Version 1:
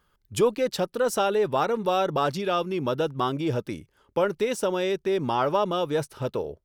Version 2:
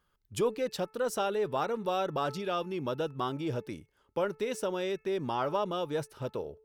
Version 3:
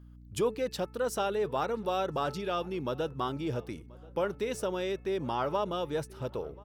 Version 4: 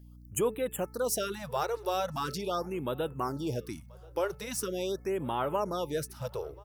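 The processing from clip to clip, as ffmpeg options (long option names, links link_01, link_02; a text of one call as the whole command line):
ffmpeg -i in.wav -af "bandreject=frequency=435.9:width_type=h:width=4,bandreject=frequency=871.8:width_type=h:width=4,bandreject=frequency=1307.7:width_type=h:width=4,bandreject=frequency=1743.6:width_type=h:width=4,bandreject=frequency=2179.5:width_type=h:width=4,bandreject=frequency=2615.4:width_type=h:width=4,volume=-7dB" out.wav
ffmpeg -i in.wav -filter_complex "[0:a]aeval=exprs='val(0)+0.00316*(sin(2*PI*60*n/s)+sin(2*PI*2*60*n/s)/2+sin(2*PI*3*60*n/s)/3+sin(2*PI*4*60*n/s)/4+sin(2*PI*5*60*n/s)/5)':channel_layout=same,asplit=2[link_01][link_02];[link_02]adelay=1032,lowpass=frequency=2500:poles=1,volume=-23dB,asplit=2[link_03][link_04];[link_04]adelay=1032,lowpass=frequency=2500:poles=1,volume=0.38,asplit=2[link_05][link_06];[link_06]adelay=1032,lowpass=frequency=2500:poles=1,volume=0.38[link_07];[link_01][link_03][link_05][link_07]amix=inputs=4:normalize=0" out.wav
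ffmpeg -i in.wav -af "aexciter=amount=2.9:drive=4:freq=4500,afftfilt=real='re*(1-between(b*sr/1024,210*pow(5700/210,0.5+0.5*sin(2*PI*0.42*pts/sr))/1.41,210*pow(5700/210,0.5+0.5*sin(2*PI*0.42*pts/sr))*1.41))':imag='im*(1-between(b*sr/1024,210*pow(5700/210,0.5+0.5*sin(2*PI*0.42*pts/sr))/1.41,210*pow(5700/210,0.5+0.5*sin(2*PI*0.42*pts/sr))*1.41))':win_size=1024:overlap=0.75" out.wav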